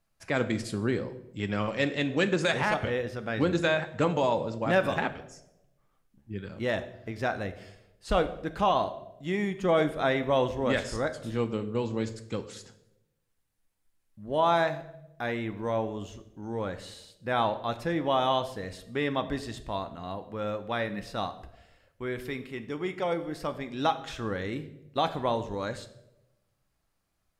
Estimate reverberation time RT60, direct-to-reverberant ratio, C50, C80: 0.90 s, 9.5 dB, 14.0 dB, 16.5 dB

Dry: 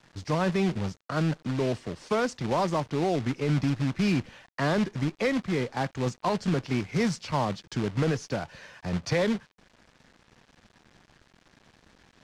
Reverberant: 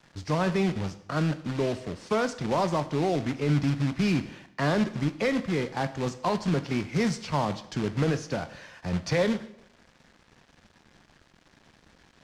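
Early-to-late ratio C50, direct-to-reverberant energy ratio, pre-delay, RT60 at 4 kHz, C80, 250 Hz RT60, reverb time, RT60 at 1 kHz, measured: 14.5 dB, 11.0 dB, 4 ms, 0.75 s, 17.0 dB, 0.80 s, 0.80 s, 0.80 s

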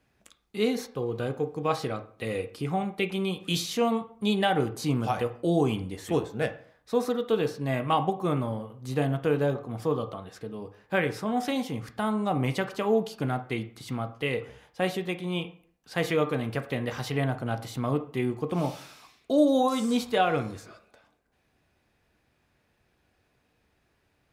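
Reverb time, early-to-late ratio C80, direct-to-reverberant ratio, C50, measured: 0.50 s, 17.5 dB, 7.5 dB, 13.0 dB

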